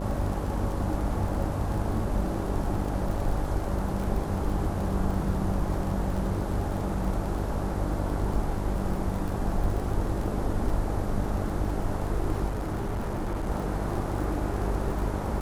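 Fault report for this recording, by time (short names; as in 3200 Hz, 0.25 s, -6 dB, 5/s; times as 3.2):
buzz 50 Hz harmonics 14 -32 dBFS
crackle 37/s -33 dBFS
12.48–13.48 clipped -26.5 dBFS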